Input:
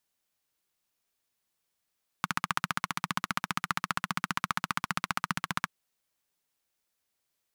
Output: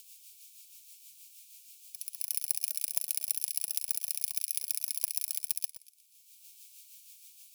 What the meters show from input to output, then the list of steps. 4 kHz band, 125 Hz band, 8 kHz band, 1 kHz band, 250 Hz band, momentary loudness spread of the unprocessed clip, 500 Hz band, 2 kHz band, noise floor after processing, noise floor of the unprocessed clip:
-3.0 dB, under -40 dB, +10.5 dB, under -40 dB, under -40 dB, 3 LU, under -40 dB, -20.0 dB, -61 dBFS, -82 dBFS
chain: FFT order left unsorted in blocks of 32 samples; upward compressor, threshold -48 dBFS; wavefolder -19 dBFS; high shelf 4900 Hz +11 dB; limiter -14.5 dBFS, peak gain reduction 7 dB; brick-wall FIR high-pass 2200 Hz; rotary speaker horn 6.3 Hz; on a send: reverse echo 0.294 s -7.5 dB; on the sum: warbling echo 0.12 s, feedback 41%, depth 72 cents, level -13 dB; gain +4 dB

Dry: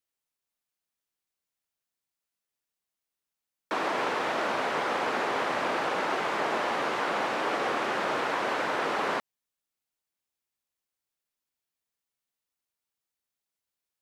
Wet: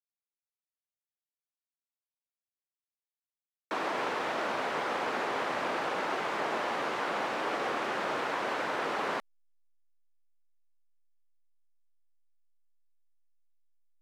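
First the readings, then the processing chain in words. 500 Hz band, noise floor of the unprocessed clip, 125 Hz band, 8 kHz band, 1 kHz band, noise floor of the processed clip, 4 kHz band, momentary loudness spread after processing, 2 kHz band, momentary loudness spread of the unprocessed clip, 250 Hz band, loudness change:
-3.5 dB, under -85 dBFS, -3.5 dB, -4.0 dB, -3.5 dB, under -85 dBFS, -3.5 dB, 1 LU, -3.5 dB, 1 LU, -3.5 dB, -3.5 dB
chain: backlash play -55 dBFS; gain -3.5 dB

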